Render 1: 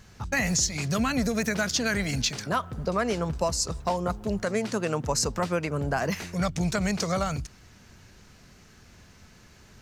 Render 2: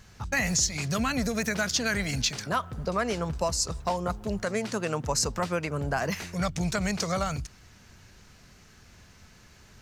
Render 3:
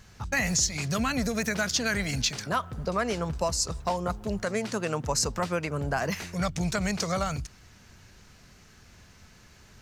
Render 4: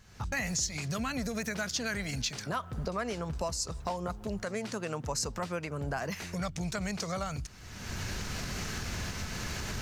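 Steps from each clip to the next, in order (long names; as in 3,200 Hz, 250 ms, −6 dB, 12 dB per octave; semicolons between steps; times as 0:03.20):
parametric band 290 Hz −3 dB 2.3 octaves
no processing that can be heard
camcorder AGC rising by 37 dB per second; level −6.5 dB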